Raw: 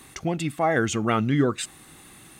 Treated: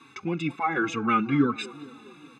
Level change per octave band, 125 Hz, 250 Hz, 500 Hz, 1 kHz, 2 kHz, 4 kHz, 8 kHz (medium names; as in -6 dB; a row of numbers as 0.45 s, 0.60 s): -6.0 dB, -0.5 dB, -7.0 dB, +0.5 dB, -0.5 dB, -4.0 dB, -13.5 dB